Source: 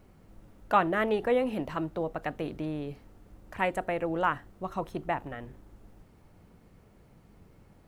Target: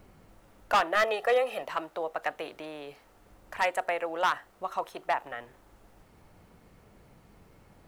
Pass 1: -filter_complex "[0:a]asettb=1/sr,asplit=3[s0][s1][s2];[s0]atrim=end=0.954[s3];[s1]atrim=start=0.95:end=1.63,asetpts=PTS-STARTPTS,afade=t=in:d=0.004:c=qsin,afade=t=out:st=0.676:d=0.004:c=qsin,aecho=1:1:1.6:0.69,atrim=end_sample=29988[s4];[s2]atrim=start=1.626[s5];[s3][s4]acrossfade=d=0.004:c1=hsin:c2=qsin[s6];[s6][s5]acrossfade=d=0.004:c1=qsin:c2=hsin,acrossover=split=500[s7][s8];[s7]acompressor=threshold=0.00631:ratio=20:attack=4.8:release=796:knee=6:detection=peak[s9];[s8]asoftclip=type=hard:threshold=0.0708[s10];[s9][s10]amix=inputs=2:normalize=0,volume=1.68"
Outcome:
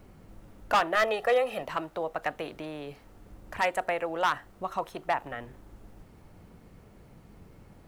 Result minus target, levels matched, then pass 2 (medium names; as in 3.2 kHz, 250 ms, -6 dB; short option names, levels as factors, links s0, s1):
compression: peak gain reduction -11.5 dB
-filter_complex "[0:a]asettb=1/sr,asplit=3[s0][s1][s2];[s0]atrim=end=0.954[s3];[s1]atrim=start=0.95:end=1.63,asetpts=PTS-STARTPTS,afade=t=in:d=0.004:c=qsin,afade=t=out:st=0.676:d=0.004:c=qsin,aecho=1:1:1.6:0.69,atrim=end_sample=29988[s4];[s2]atrim=start=1.626[s5];[s3][s4]acrossfade=d=0.004:c1=hsin:c2=qsin[s6];[s6][s5]acrossfade=d=0.004:c1=qsin:c2=hsin,acrossover=split=500[s7][s8];[s7]acompressor=threshold=0.00158:ratio=20:attack=4.8:release=796:knee=6:detection=peak[s9];[s8]asoftclip=type=hard:threshold=0.0708[s10];[s9][s10]amix=inputs=2:normalize=0,volume=1.68"